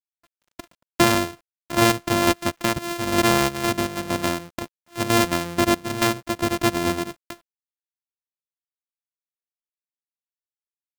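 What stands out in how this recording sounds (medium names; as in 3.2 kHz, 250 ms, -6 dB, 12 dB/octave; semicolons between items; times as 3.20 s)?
a buzz of ramps at a fixed pitch in blocks of 128 samples; tremolo saw down 2.2 Hz, depth 35%; a quantiser's noise floor 10-bit, dither none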